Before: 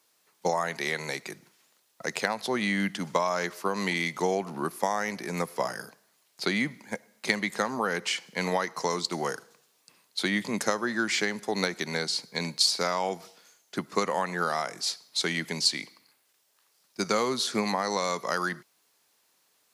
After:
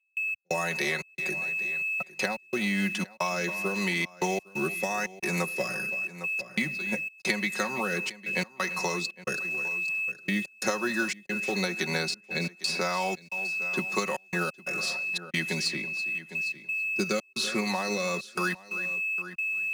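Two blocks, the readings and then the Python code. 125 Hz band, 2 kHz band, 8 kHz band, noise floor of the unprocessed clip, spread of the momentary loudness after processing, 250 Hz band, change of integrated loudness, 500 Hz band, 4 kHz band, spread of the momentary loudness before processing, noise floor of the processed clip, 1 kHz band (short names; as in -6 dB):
+1.0 dB, +4.0 dB, -2.0 dB, -69 dBFS, 3 LU, -0.5 dB, 0.0 dB, -2.5 dB, -4.0 dB, 10 LU, -56 dBFS, -4.0 dB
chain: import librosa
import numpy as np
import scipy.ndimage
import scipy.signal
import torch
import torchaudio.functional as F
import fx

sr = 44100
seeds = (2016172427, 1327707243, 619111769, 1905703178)

p1 = fx.rotary(x, sr, hz=0.9)
p2 = p1 + 10.0 ** (-18.5 / 20.0) * np.pad(p1, (int(328 * sr / 1000.0), 0))[:len(p1)]
p3 = p2 + 10.0 ** (-38.0 / 20.0) * np.sin(2.0 * np.pi * 2600.0 * np.arange(len(p2)) / sr)
p4 = fx.high_shelf(p3, sr, hz=4500.0, db=3.5)
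p5 = fx.quant_companded(p4, sr, bits=4)
p6 = p4 + (p5 * 10.0 ** (-9.0 / 20.0))
p7 = fx.step_gate(p6, sr, bpm=89, pattern='.x.xxx.xxxxx', floor_db=-60.0, edge_ms=4.5)
p8 = p7 + 0.7 * np.pad(p7, (int(5.4 * sr / 1000.0), 0))[:len(p7)]
p9 = p8 + fx.echo_single(p8, sr, ms=806, db=-22.5, dry=0)
p10 = fx.band_squash(p9, sr, depth_pct=70)
y = p10 * 10.0 ** (-3.5 / 20.0)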